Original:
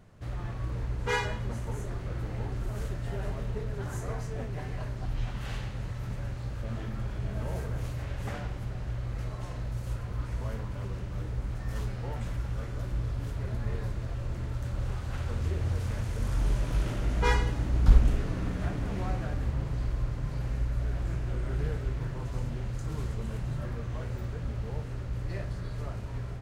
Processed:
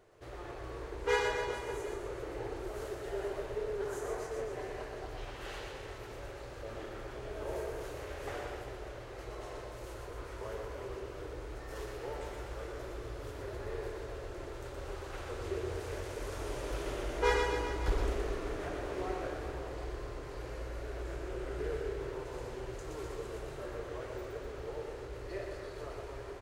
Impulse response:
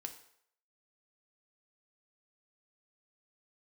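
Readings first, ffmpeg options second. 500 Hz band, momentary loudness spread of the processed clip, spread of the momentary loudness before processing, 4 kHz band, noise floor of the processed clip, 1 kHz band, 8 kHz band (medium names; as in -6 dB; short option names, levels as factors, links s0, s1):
+4.0 dB, 10 LU, 7 LU, -1.5 dB, -46 dBFS, -0.5 dB, -1.5 dB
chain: -af "lowshelf=f=280:t=q:w=3:g=-10.5,aecho=1:1:120|252|397.2|556.9|732.6:0.631|0.398|0.251|0.158|0.1,volume=0.668"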